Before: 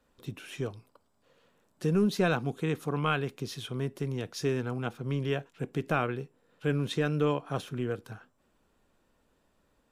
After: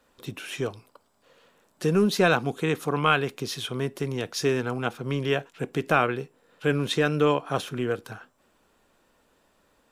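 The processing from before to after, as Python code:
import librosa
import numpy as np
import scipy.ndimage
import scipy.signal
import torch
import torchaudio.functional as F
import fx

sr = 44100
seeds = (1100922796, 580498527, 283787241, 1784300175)

y = fx.low_shelf(x, sr, hz=260.0, db=-9.0)
y = y * librosa.db_to_amplitude(8.5)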